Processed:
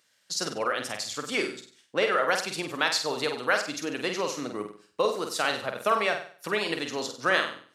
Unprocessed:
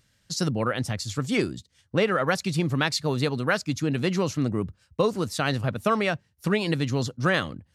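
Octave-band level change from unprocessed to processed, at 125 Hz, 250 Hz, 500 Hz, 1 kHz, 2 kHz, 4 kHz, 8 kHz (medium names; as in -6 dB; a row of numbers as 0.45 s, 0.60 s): -19.0 dB, -9.5 dB, -1.5 dB, +1.0 dB, +1.0 dB, +1.0 dB, +1.0 dB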